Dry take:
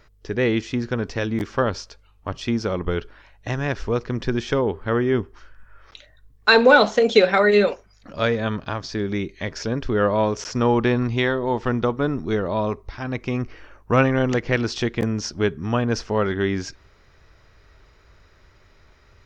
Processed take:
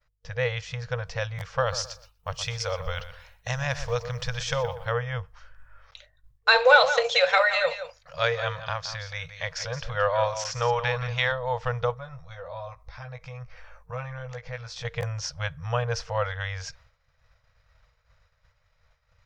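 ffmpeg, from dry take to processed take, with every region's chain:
ffmpeg -i in.wav -filter_complex "[0:a]asettb=1/sr,asplit=3[link_01][link_02][link_03];[link_01]atrim=end=1.604[link_04];[link_02]atrim=start=1.6:end=4.92,asetpts=PTS-STARTPTS,afade=type=in:duration=0.004:curve=qsin,afade=type=out:start_time=3.316:duration=0.004:curve=qsin,aemphasis=mode=production:type=75fm,asplit=2[link_05][link_06];[link_06]adelay=121,lowpass=frequency=3400:poles=1,volume=-11dB,asplit=2[link_07][link_08];[link_08]adelay=121,lowpass=frequency=3400:poles=1,volume=0.31,asplit=2[link_09][link_10];[link_10]adelay=121,lowpass=frequency=3400:poles=1,volume=0.31[link_11];[link_05][link_07][link_09][link_11]amix=inputs=4:normalize=0,atrim=end_sample=146412[link_12];[link_03]atrim=start=4.916[link_13];[link_04][link_12]acrossfade=duration=0.004:curve1=hsin:curve2=qsin[link_14];[link_14][link_13]acrossfade=duration=0.004:curve1=qsin:curve2=hsin,asettb=1/sr,asplit=3[link_15][link_16][link_17];[link_15]atrim=end=6.564[link_18];[link_16]atrim=start=6.56:end=11.32,asetpts=PTS-STARTPTS,afade=type=in:duration=0.004:curve=qsin,afade=type=out:start_time=4.756:duration=0.004:curve=qsin,tiltshelf=frequency=720:gain=-3.5,aecho=1:1:172:0.282,atrim=end_sample=209916[link_19];[link_17]atrim=start=11.316[link_20];[link_18][link_19]acrossfade=duration=0.004:curve1=hsin:curve2=qsin[link_21];[link_21][link_20]acrossfade=duration=0.004:curve1=qsin:curve2=hsin,asettb=1/sr,asplit=3[link_22][link_23][link_24];[link_22]atrim=end=11.944[link_25];[link_23]atrim=start=11.94:end=14.85,asetpts=PTS-STARTPTS,afade=type=in:duration=0.004:curve=qsin,afade=type=out:start_time=2.906:duration=0.004:curve=qsin,bandreject=frequency=2900:width=9.5,asplit=2[link_26][link_27];[link_27]adelay=16,volume=-5.5dB[link_28];[link_26][link_28]amix=inputs=2:normalize=0,atrim=end_sample=128331,acompressor=threshold=-37dB:ratio=2:attack=3.2:release=140:knee=1:detection=peak[link_29];[link_24]atrim=start=14.846[link_30];[link_25][link_29]acrossfade=duration=0.004:curve1=hsin:curve2=qsin[link_31];[link_31][link_30]acrossfade=duration=0.004:curve1=qsin:curve2=hsin,afftfilt=real='re*(1-between(b*sr/4096,170,460))':imag='im*(1-between(b*sr/4096,170,460))':win_size=4096:overlap=0.75,agate=range=-33dB:threshold=-45dB:ratio=3:detection=peak,volume=-3dB" out.wav

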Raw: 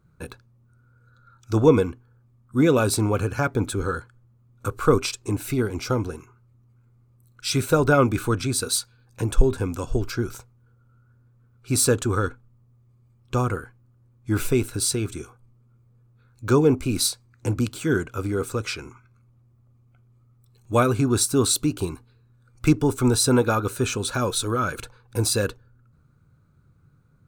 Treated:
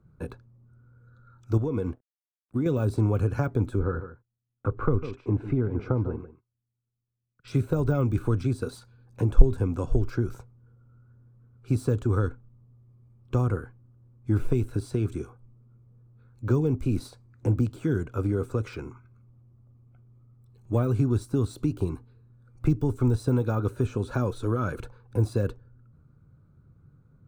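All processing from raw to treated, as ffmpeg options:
ffmpeg -i in.wav -filter_complex "[0:a]asettb=1/sr,asplit=3[link_01][link_02][link_03];[link_01]atrim=end=1.574[link_04];[link_02]atrim=start=1.57:end=2.66,asetpts=PTS-STARTPTS,afade=type=in:duration=0.004:curve=qsin,afade=type=out:start_time=1.086:duration=0.004:curve=qsin,aeval=exprs='sgn(val(0))*max(abs(val(0))-0.00335,0)':channel_layout=same,acompressor=threshold=-23dB:ratio=6:attack=3.2:release=140:knee=1:detection=peak[link_05];[link_03]atrim=start=2.656[link_06];[link_04][link_05]acrossfade=duration=0.004:curve1=hsin:curve2=qsin[link_07];[link_07][link_06]acrossfade=duration=0.004:curve1=qsin:curve2=hsin,asettb=1/sr,asplit=3[link_08][link_09][link_10];[link_08]atrim=end=3.794[link_11];[link_09]atrim=start=3.79:end=7.48,asetpts=PTS-STARTPTS,afade=type=in:duration=0.004:curve=qsin,afade=type=out:start_time=3.686:duration=0.004:curve=qsin,lowpass=1800,agate=range=-29dB:threshold=-50dB:ratio=16:release=100:detection=peak,aecho=1:1:148:0.188,atrim=end_sample=162729[link_12];[link_10]atrim=start=7.476[link_13];[link_11][link_12]acrossfade=duration=0.004:curve1=hsin:curve2=qsin[link_14];[link_14][link_13]acrossfade=duration=0.004:curve1=qsin:curve2=hsin,deesser=0.85,tiltshelf=frequency=1500:gain=7.5,acrossover=split=140|3000[link_15][link_16][link_17];[link_16]acompressor=threshold=-20dB:ratio=6[link_18];[link_15][link_18][link_17]amix=inputs=3:normalize=0,volume=-5dB" out.wav

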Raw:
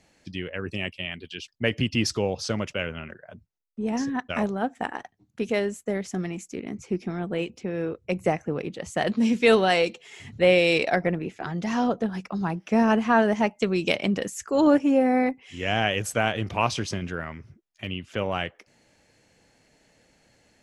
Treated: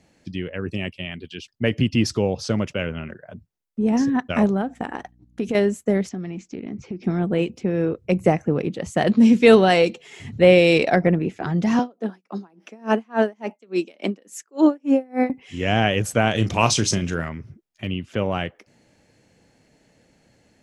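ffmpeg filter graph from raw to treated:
ffmpeg -i in.wav -filter_complex "[0:a]asettb=1/sr,asplit=3[link_01][link_02][link_03];[link_01]atrim=end=4.614[link_04];[link_02]atrim=start=4.61:end=5.55,asetpts=PTS-STARTPTS,afade=type=in:duration=0.004:curve=qsin,afade=type=out:start_time=0.936:duration=0.004:curve=qsin,acompressor=threshold=-28dB:ratio=5:attack=3.2:release=140:knee=1:detection=peak,agate=range=-8dB:threshold=-59dB:ratio=16:release=100:detection=peak,aeval=exprs='val(0)+0.000708*(sin(2*PI*60*n/s)+sin(2*PI*2*60*n/s)/2+sin(2*PI*3*60*n/s)/3+sin(2*PI*4*60*n/s)/4+sin(2*PI*5*60*n/s)/5)':channel_layout=same[link_05];[link_03]atrim=start=5.546[link_06];[link_04][link_05]acrossfade=duration=0.004:curve1=hsin:curve2=qsin[link_07];[link_07][link_06]acrossfade=duration=0.004:curve1=qsin:curve2=hsin,asettb=1/sr,asplit=3[link_08][link_09][link_10];[link_08]atrim=end=6.094[link_11];[link_09]atrim=start=6.09:end=7.04,asetpts=PTS-STARTPTS,afade=type=in:duration=0.004:curve=qsin,afade=type=out:start_time=0.946:duration=0.004:curve=qsin,lowpass=frequency=5300:width=0.5412,lowpass=frequency=5300:width=1.3066,acompressor=threshold=-36dB:ratio=5:attack=3.2:release=140:knee=1:detection=peak[link_12];[link_10]atrim=start=7.036[link_13];[link_11][link_12]acrossfade=duration=0.004:curve1=hsin:curve2=qsin[link_14];[link_14][link_13]acrossfade=duration=0.004:curve1=qsin:curve2=hsin,asettb=1/sr,asplit=3[link_15][link_16][link_17];[link_15]atrim=end=11.794[link_18];[link_16]atrim=start=11.79:end=15.3,asetpts=PTS-STARTPTS,afade=type=in:duration=0.004:curve=qsin,afade=type=out:start_time=3.506:duration=0.004:curve=qsin,highpass=frequency=250:width=0.5412,highpass=frequency=250:width=1.3066,aeval=exprs='val(0)*pow(10,-33*(0.5-0.5*cos(2*PI*3.5*n/s))/20)':channel_layout=same[link_19];[link_17]atrim=start=15.296[link_20];[link_18][link_19]acrossfade=duration=0.004:curve1=hsin:curve2=qsin[link_21];[link_21][link_20]acrossfade=duration=0.004:curve1=qsin:curve2=hsin,asettb=1/sr,asplit=3[link_22][link_23][link_24];[link_22]atrim=end=16.314[link_25];[link_23]atrim=start=16.31:end=17.29,asetpts=PTS-STARTPTS,afade=type=in:duration=0.004:curve=qsin,afade=type=out:start_time=0.976:duration=0.004:curve=qsin,equalizer=frequency=7200:width=0.62:gain=13.5,bandreject=frequency=4700:width=25,asplit=2[link_26][link_27];[link_27]adelay=36,volume=-13dB[link_28];[link_26][link_28]amix=inputs=2:normalize=0,atrim=end_sample=43218[link_29];[link_24]atrim=start=17.286[link_30];[link_25][link_29]acrossfade=duration=0.004:curve1=hsin:curve2=qsin[link_31];[link_31][link_30]acrossfade=duration=0.004:curve1=qsin:curve2=hsin,equalizer=frequency=170:width=0.35:gain=7,dynaudnorm=framelen=650:gausssize=11:maxgain=11.5dB,volume=-1dB" out.wav

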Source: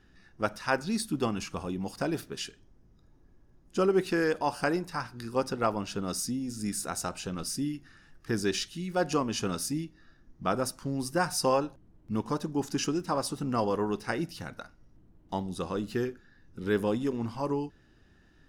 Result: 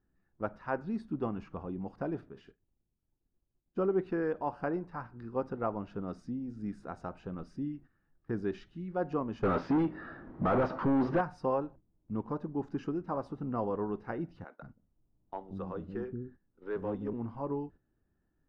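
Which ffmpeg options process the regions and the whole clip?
ffmpeg -i in.wav -filter_complex "[0:a]asettb=1/sr,asplit=3[link_01][link_02][link_03];[link_01]atrim=end=2.294[link_04];[link_02]atrim=start=2.29:end=3.77,asetpts=PTS-STARTPTS,afade=type=in:duration=0.004:curve=qsin,afade=type=out:start_time=1.476:duration=0.004:curve=qsin,agate=range=-33dB:threshold=-53dB:ratio=3:release=100:detection=peak,acompressor=threshold=-41dB:ratio=2:attack=3.2:release=140:knee=1:detection=peak,asplit=2[link_05][link_06];[link_06]adelay=44,volume=-13dB[link_07];[link_05][link_07]amix=inputs=2:normalize=0,atrim=end_sample=65268[link_08];[link_03]atrim=start=3.766[link_09];[link_04][link_08]acrossfade=duration=0.004:curve1=hsin:curve2=qsin[link_10];[link_10][link_09]acrossfade=duration=0.004:curve1=qsin:curve2=hsin,asettb=1/sr,asplit=3[link_11][link_12][link_13];[link_11]atrim=end=9.434[link_14];[link_12]atrim=start=9.43:end=11.21,asetpts=PTS-STARTPTS,afade=type=in:duration=0.004:curve=qsin,afade=type=out:start_time=1.776:duration=0.004:curve=qsin,lowpass=frequency=5200:width=0.5412,lowpass=frequency=5200:width=1.3066,asplit=2[link_15][link_16];[link_16]highpass=frequency=720:poles=1,volume=36dB,asoftclip=type=tanh:threshold=-14.5dB[link_17];[link_15][link_17]amix=inputs=2:normalize=0,lowpass=frequency=2300:poles=1,volume=-6dB[link_18];[link_13]atrim=start=11.206[link_19];[link_14][link_18]acrossfade=duration=0.004:curve1=hsin:curve2=qsin[link_20];[link_20][link_19]acrossfade=duration=0.004:curve1=qsin:curve2=hsin,asettb=1/sr,asplit=3[link_21][link_22][link_23];[link_21]atrim=end=14.444[link_24];[link_22]atrim=start=14.44:end=17.13,asetpts=PTS-STARTPTS,afade=type=in:duration=0.004:curve=qsin,afade=type=out:start_time=2.686:duration=0.004:curve=qsin,acrossover=split=310[link_25][link_26];[link_25]adelay=180[link_27];[link_27][link_26]amix=inputs=2:normalize=0,atrim=end_sample=118629,asoftclip=type=hard:threshold=-23.5dB[link_28];[link_23]atrim=start=17.126[link_29];[link_24][link_28]acrossfade=duration=0.004:curve1=hsin:curve2=qsin[link_30];[link_30][link_29]acrossfade=duration=0.004:curve1=qsin:curve2=hsin,agate=range=-11dB:threshold=-46dB:ratio=16:detection=peak,lowpass=1200,volume=-4.5dB" out.wav

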